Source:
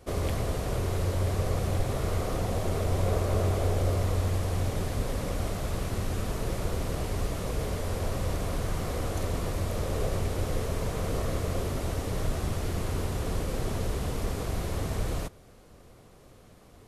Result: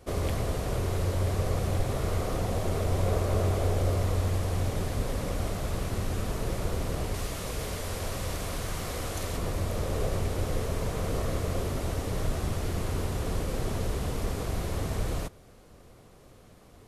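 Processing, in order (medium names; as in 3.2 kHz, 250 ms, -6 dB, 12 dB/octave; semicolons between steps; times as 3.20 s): 7.14–9.37 s: tilt shelf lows -4 dB, about 1.2 kHz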